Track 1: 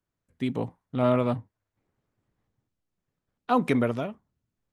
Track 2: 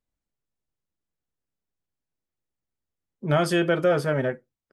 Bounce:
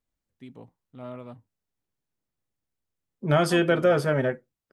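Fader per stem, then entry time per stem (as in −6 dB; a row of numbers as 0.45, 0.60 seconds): −16.5, +0.5 decibels; 0.00, 0.00 seconds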